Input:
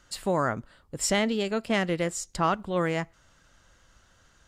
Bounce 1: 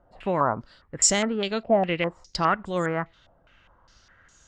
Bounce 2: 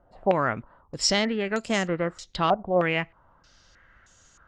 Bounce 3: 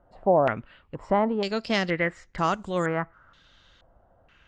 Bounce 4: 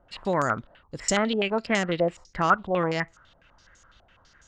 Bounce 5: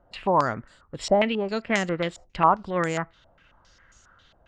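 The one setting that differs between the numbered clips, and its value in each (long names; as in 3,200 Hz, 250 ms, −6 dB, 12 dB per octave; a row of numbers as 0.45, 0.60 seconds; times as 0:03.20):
low-pass on a step sequencer, speed: 4.9, 3.2, 2.1, 12, 7.4 Hertz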